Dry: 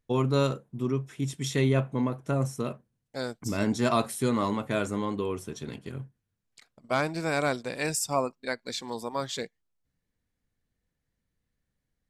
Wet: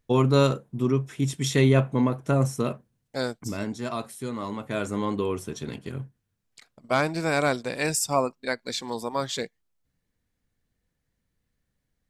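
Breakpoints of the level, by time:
0:03.25 +5 dB
0:03.74 −6.5 dB
0:04.35 −6.5 dB
0:05.08 +3.5 dB

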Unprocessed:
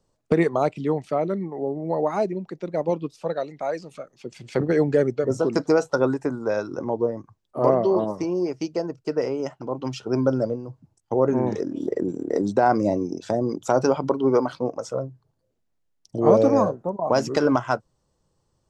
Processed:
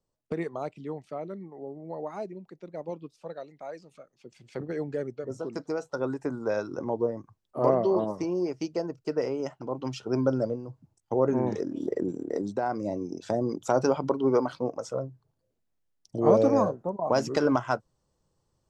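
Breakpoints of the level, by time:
0:05.82 −12.5 dB
0:06.38 −4 dB
0:12.11 −4 dB
0:12.72 −11.5 dB
0:13.29 −4 dB

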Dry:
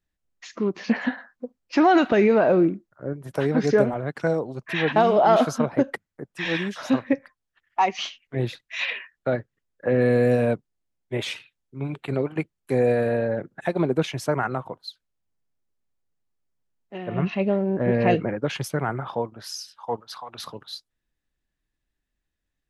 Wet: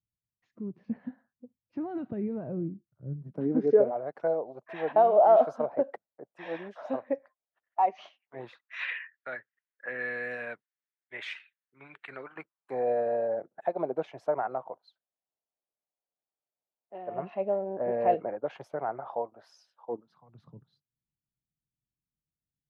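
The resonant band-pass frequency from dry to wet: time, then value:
resonant band-pass, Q 2.7
0:03.06 120 Hz
0:03.94 650 Hz
0:08.06 650 Hz
0:08.99 1,800 Hz
0:12.06 1,800 Hz
0:12.94 680 Hz
0:19.71 680 Hz
0:20.22 140 Hz

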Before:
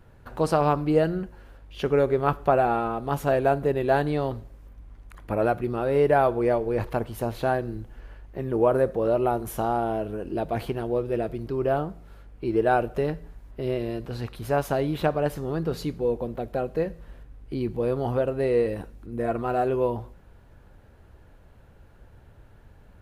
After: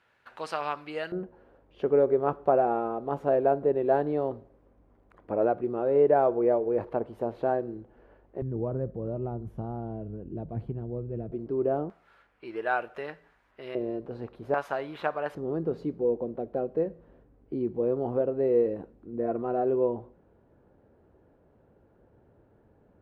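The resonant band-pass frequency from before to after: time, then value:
resonant band-pass, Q 1
2,400 Hz
from 0:01.12 460 Hz
from 0:08.42 120 Hz
from 0:11.32 350 Hz
from 0:11.90 1,700 Hz
from 0:13.75 440 Hz
from 0:14.54 1,300 Hz
from 0:15.35 370 Hz

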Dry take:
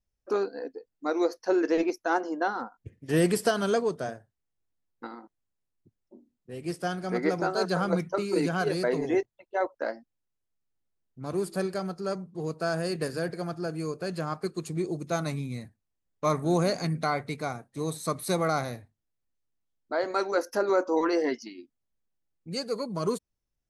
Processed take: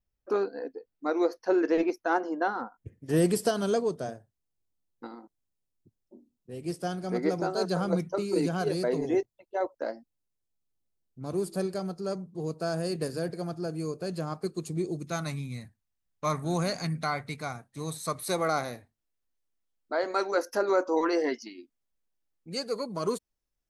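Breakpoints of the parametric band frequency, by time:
parametric band −7 dB 1.7 octaves
0:02.46 7,600 Hz
0:03.34 1,700 Hz
0:14.77 1,700 Hz
0:15.21 400 Hz
0:17.90 400 Hz
0:18.55 110 Hz

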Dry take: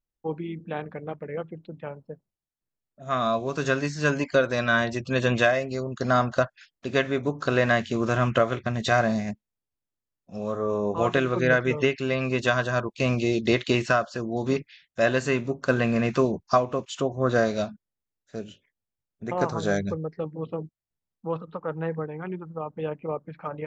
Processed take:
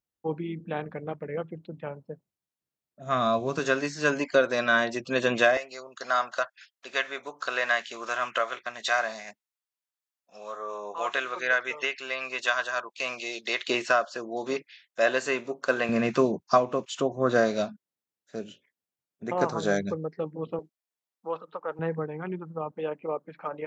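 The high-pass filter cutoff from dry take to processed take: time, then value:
95 Hz
from 0:03.59 260 Hz
from 0:05.57 890 Hz
from 0:13.68 430 Hz
from 0:15.89 180 Hz
from 0:20.59 470 Hz
from 0:21.79 130 Hz
from 0:22.73 280 Hz

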